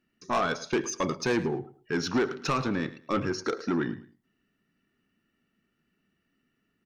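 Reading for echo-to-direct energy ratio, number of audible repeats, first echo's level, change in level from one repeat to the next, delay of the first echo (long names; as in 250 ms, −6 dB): −16.0 dB, 2, −16.5 dB, −12.5 dB, 108 ms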